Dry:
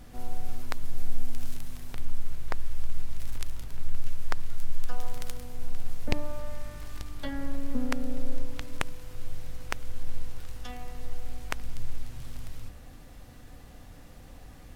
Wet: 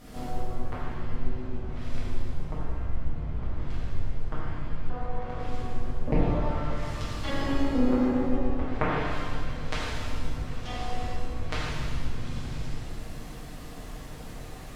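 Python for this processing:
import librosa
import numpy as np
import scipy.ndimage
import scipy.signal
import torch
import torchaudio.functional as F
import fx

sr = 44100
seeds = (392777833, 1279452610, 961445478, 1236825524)

y = fx.lower_of_two(x, sr, delay_ms=6.5)
y = fx.env_lowpass_down(y, sr, base_hz=1000.0, full_db=-24.0)
y = fx.rev_shimmer(y, sr, seeds[0], rt60_s=1.8, semitones=7, shimmer_db=-8, drr_db=-8.5)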